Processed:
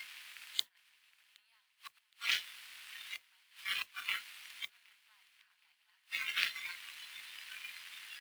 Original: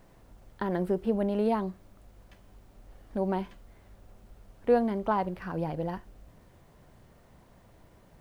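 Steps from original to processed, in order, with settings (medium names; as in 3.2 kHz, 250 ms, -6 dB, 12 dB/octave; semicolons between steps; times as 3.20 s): spectral levelling over time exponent 0.6; multi-tap echo 496/767 ms -16/-18.5 dB; inverted gate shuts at -27 dBFS, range -31 dB; Chebyshev shaper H 3 -11 dB, 7 -17 dB, 8 -26 dB, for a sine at -25.5 dBFS; inverse Chebyshev high-pass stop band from 510 Hz, stop band 50 dB; resonant high shelf 1.9 kHz +11.5 dB, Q 1.5; on a send: feedback delay 767 ms, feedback 37%, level -17.5 dB; on the sum: spectral noise reduction 14 dB; modulation noise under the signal 17 dB; trim +12 dB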